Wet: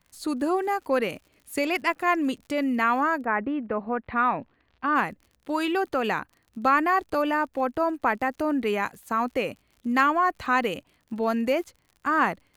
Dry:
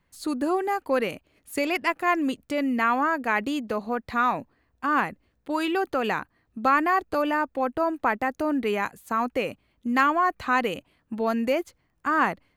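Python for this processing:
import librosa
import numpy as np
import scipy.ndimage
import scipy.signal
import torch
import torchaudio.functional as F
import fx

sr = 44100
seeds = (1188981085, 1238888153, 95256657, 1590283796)

y = fx.dmg_crackle(x, sr, seeds[0], per_s=62.0, level_db=-43.0)
y = fx.lowpass(y, sr, hz=fx.line((3.23, 1700.0), (4.94, 4400.0)), slope=24, at=(3.23, 4.94), fade=0.02)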